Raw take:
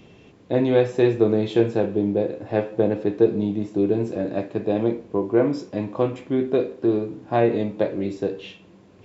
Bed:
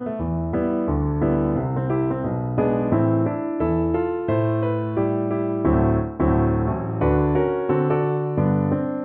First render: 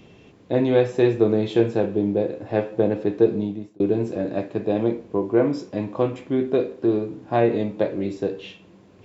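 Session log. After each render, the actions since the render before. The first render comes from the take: 3.34–3.80 s: fade out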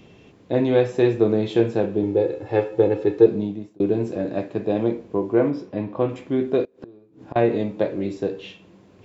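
2.03–3.26 s: comb 2.3 ms; 5.50–6.09 s: distance through air 180 m; 6.64–7.36 s: inverted gate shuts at -25 dBFS, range -26 dB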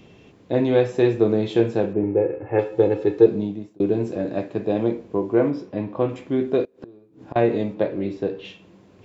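1.93–2.59 s: steep low-pass 2.6 kHz 48 dB/octave; 7.74–8.45 s: low-pass 4.2 kHz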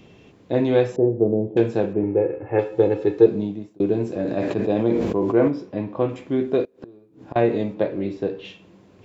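0.96–1.57 s: Chebyshev low-pass 670 Hz, order 3; 4.19–5.48 s: decay stretcher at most 26 dB/s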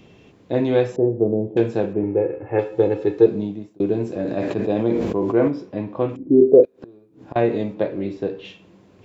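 6.15–6.63 s: resonant low-pass 240 Hz -> 560 Hz, resonance Q 4.8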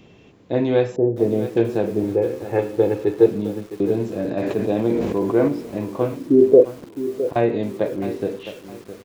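echo from a far wall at 300 m, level -27 dB; bit-crushed delay 662 ms, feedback 35%, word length 6-bit, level -12 dB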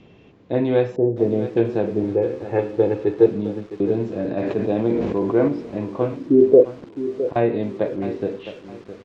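distance through air 130 m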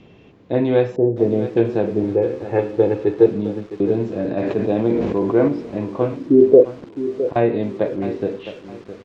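trim +2 dB; peak limiter -1 dBFS, peak gain reduction 1 dB

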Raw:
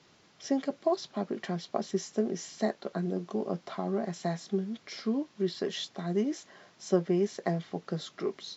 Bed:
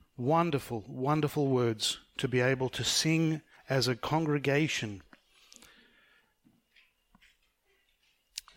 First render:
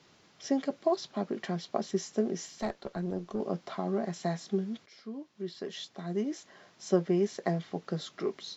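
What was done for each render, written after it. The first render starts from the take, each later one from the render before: 2.46–3.40 s: valve stage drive 24 dB, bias 0.55; 4.86–6.94 s: fade in, from -15 dB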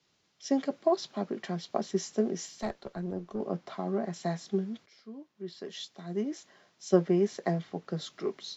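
three bands expanded up and down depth 40%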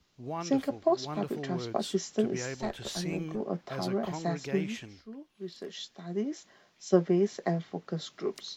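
add bed -10 dB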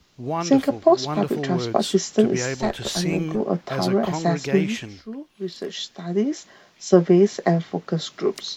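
trim +10.5 dB; peak limiter -3 dBFS, peak gain reduction 2.5 dB

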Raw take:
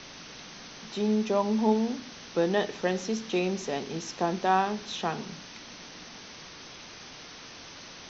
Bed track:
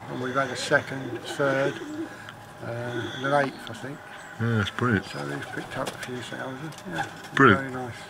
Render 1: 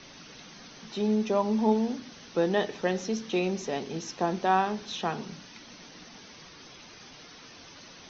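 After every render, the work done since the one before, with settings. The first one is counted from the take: noise reduction 7 dB, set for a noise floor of -46 dBFS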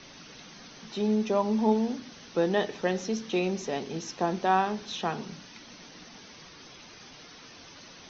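no audible change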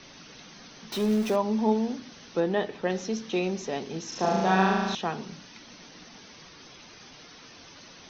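0.92–1.36 s: jump at every zero crossing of -32.5 dBFS; 2.40–2.90 s: distance through air 150 m; 4.08–4.95 s: flutter echo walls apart 6.3 m, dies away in 1.4 s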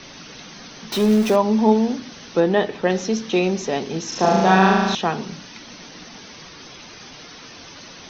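trim +8.5 dB; peak limiter -3 dBFS, peak gain reduction 2.5 dB

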